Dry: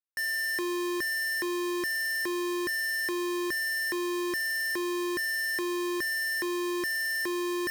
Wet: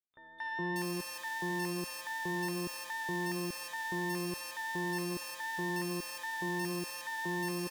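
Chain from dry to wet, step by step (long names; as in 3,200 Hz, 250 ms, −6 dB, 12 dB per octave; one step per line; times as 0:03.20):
pitch vibrato 6.3 Hz 11 cents
three-band delay without the direct sound lows, mids, highs 230/590 ms, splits 1,100/3,600 Hz
pitch-shifted copies added −12 semitones −2 dB, +12 semitones −18 dB
level −8 dB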